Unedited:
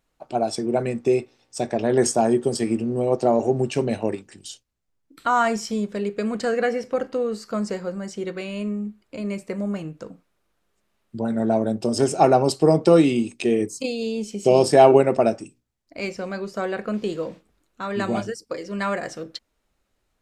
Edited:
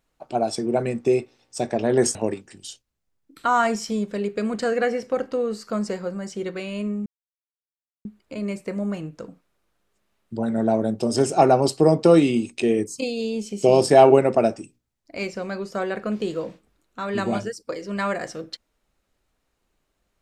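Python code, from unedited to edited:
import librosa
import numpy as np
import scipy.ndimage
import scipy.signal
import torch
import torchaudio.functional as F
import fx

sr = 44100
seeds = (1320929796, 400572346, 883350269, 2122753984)

y = fx.edit(x, sr, fx.cut(start_s=2.15, length_s=1.81),
    fx.insert_silence(at_s=8.87, length_s=0.99), tone=tone)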